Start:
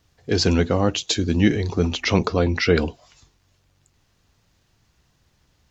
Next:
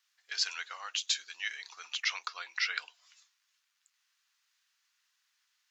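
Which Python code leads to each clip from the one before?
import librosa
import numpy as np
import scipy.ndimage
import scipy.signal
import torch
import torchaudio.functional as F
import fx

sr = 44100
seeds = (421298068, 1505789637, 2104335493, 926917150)

y = scipy.signal.sosfilt(scipy.signal.butter(4, 1300.0, 'highpass', fs=sr, output='sos'), x)
y = y * 10.0 ** (-7.0 / 20.0)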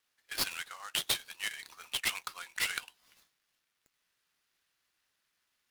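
y = fx.dynamic_eq(x, sr, hz=3100.0, q=2.1, threshold_db=-46.0, ratio=4.0, max_db=6)
y = fx.noise_mod_delay(y, sr, seeds[0], noise_hz=5700.0, depth_ms=0.03)
y = y * 10.0 ** (-2.5 / 20.0)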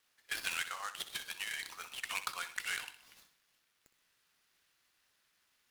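y = fx.over_compress(x, sr, threshold_db=-38.0, ratio=-0.5)
y = fx.echo_feedback(y, sr, ms=63, feedback_pct=47, wet_db=-13.0)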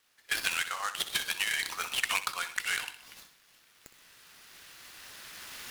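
y = fx.recorder_agc(x, sr, target_db=-21.5, rise_db_per_s=8.7, max_gain_db=30)
y = y * 10.0 ** (5.0 / 20.0)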